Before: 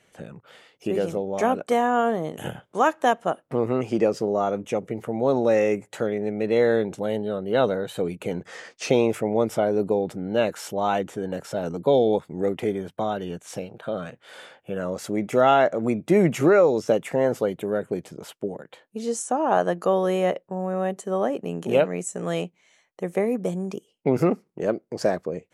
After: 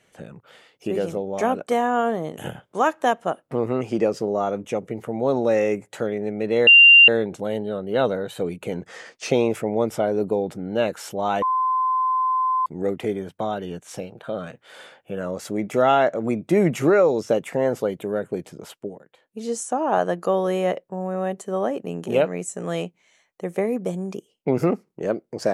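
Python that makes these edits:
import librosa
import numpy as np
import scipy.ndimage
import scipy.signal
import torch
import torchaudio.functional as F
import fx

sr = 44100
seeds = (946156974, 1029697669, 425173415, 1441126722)

y = fx.edit(x, sr, fx.insert_tone(at_s=6.67, length_s=0.41, hz=2780.0, db=-6.5),
    fx.bleep(start_s=11.01, length_s=1.24, hz=1030.0, db=-18.0),
    fx.fade_down_up(start_s=18.33, length_s=0.71, db=-9.5, fade_s=0.28), tone=tone)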